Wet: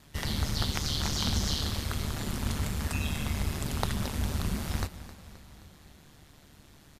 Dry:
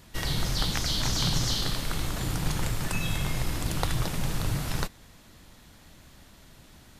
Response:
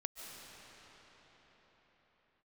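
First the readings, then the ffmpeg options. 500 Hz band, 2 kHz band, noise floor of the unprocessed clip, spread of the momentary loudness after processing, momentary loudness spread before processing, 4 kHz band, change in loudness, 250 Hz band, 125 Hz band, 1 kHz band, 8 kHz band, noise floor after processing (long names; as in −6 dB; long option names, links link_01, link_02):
−2.5 dB, −3.5 dB, −54 dBFS, 9 LU, 5 LU, −3.5 dB, −2.0 dB, −0.5 dB, −1.5 dB, −3.0 dB, −3.5 dB, −56 dBFS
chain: -filter_complex "[0:a]aeval=exprs='val(0)*sin(2*PI*74*n/s)':channel_layout=same,aecho=1:1:263|526|789|1052|1315:0.168|0.0907|0.049|0.0264|0.0143,asplit=2[link_01][link_02];[1:a]atrim=start_sample=2205[link_03];[link_02][link_03]afir=irnorm=-1:irlink=0,volume=-15dB[link_04];[link_01][link_04]amix=inputs=2:normalize=0,volume=-1.5dB"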